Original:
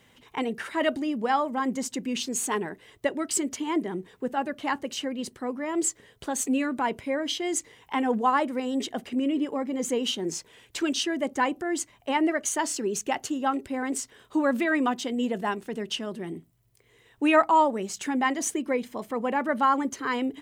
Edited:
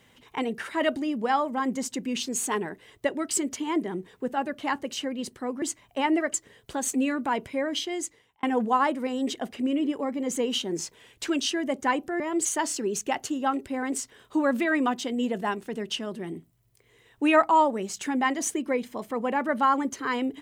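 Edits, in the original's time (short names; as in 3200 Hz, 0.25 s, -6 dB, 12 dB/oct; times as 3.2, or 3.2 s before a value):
5.62–5.87 swap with 11.73–12.45
7.31–7.96 fade out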